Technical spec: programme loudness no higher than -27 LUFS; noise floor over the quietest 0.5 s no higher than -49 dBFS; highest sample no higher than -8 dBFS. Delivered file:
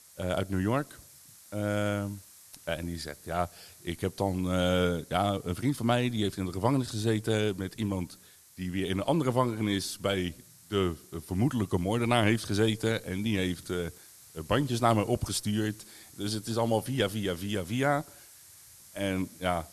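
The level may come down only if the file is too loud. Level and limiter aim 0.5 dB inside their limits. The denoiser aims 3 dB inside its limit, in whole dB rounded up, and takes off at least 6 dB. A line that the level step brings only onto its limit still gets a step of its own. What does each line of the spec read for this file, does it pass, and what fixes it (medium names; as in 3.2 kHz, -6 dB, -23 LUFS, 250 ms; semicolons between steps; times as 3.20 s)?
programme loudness -30.0 LUFS: pass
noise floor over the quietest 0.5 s -54 dBFS: pass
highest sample -9.5 dBFS: pass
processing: none needed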